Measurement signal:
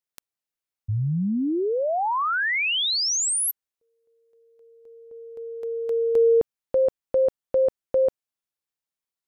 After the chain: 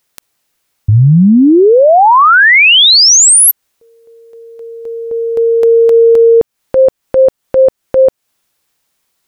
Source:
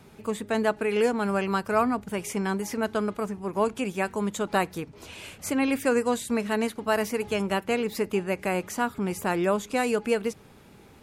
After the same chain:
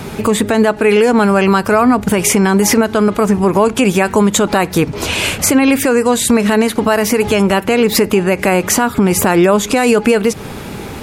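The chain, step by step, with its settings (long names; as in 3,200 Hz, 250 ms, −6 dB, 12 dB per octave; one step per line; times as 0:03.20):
downward compressor 6 to 1, threshold −30 dBFS
boost into a limiter +26.5 dB
level −1 dB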